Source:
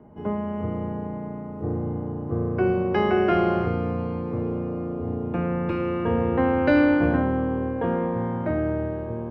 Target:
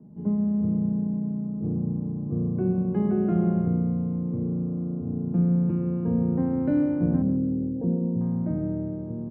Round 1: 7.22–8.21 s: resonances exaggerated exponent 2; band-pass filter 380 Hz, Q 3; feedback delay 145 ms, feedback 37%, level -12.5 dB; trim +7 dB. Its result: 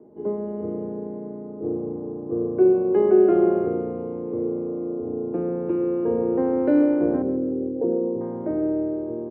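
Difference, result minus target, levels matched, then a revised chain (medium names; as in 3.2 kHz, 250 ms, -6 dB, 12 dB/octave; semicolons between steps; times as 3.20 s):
500 Hz band +10.0 dB
7.22–8.21 s: resonances exaggerated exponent 2; band-pass filter 180 Hz, Q 3; feedback delay 145 ms, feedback 37%, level -12.5 dB; trim +7 dB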